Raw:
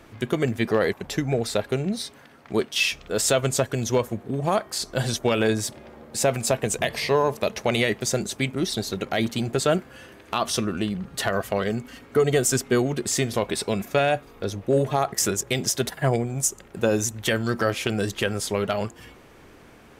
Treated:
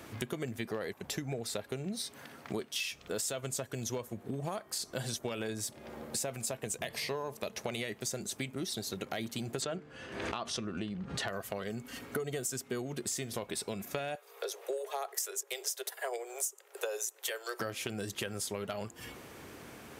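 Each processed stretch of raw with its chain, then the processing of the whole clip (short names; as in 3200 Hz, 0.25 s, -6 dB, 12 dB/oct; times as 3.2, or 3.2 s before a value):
9.62–11.28 air absorption 100 m + de-hum 149.1 Hz, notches 3 + backwards sustainer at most 90 dB/s
14.15–17.6 steep high-pass 380 Hz 96 dB/oct + high shelf 8900 Hz +5 dB + overloaded stage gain 12 dB
whole clip: HPF 73 Hz; high shelf 6000 Hz +8.5 dB; compressor 6:1, threshold -35 dBFS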